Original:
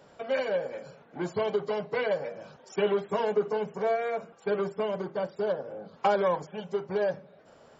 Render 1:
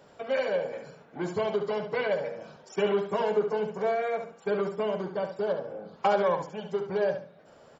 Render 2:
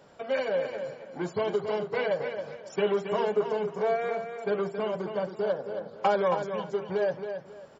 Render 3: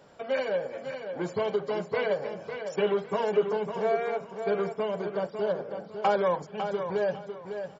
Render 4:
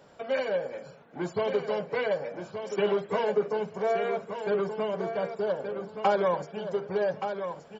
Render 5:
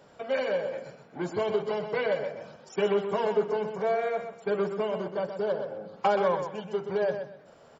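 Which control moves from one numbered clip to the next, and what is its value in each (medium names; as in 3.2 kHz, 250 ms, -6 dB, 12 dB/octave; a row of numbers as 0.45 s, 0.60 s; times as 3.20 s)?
feedback delay, time: 70 ms, 272 ms, 552 ms, 1174 ms, 126 ms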